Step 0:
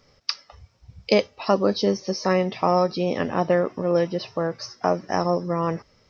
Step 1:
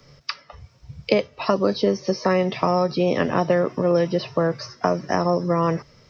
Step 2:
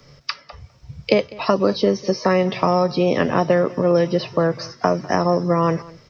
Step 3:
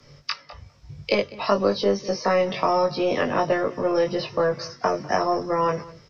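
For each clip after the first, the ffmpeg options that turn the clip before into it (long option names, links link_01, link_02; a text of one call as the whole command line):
ffmpeg -i in.wav -filter_complex "[0:a]acrossover=split=110|250|3300[link_01][link_02][link_03][link_04];[link_01]acompressor=threshold=-50dB:ratio=4[link_05];[link_02]acompressor=threshold=-36dB:ratio=4[link_06];[link_03]acompressor=threshold=-23dB:ratio=4[link_07];[link_04]acompressor=threshold=-45dB:ratio=4[link_08];[link_05][link_06][link_07][link_08]amix=inputs=4:normalize=0,equalizer=frequency=140:width_type=o:width=0.23:gain=13.5,bandreject=frequency=800:width=12,volume=6dB" out.wav
ffmpeg -i in.wav -af "aecho=1:1:200:0.0841,volume=2.5dB" out.wav
ffmpeg -i in.wav -filter_complex "[0:a]acrossover=split=370|1200[link_01][link_02][link_03];[link_01]asoftclip=type=tanh:threshold=-27dB[link_04];[link_04][link_02][link_03]amix=inputs=3:normalize=0,asplit=2[link_05][link_06];[link_06]adelay=20,volume=-2.5dB[link_07];[link_05][link_07]amix=inputs=2:normalize=0,aresample=32000,aresample=44100,volume=-4dB" out.wav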